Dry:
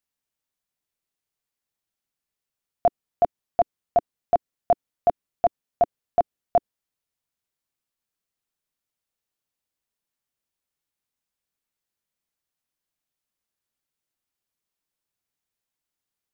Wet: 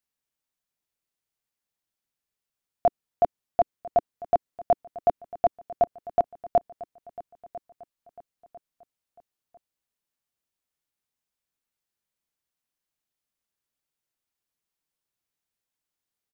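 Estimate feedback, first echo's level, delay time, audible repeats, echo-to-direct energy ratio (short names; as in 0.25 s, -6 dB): 39%, -18.0 dB, 0.998 s, 3, -17.5 dB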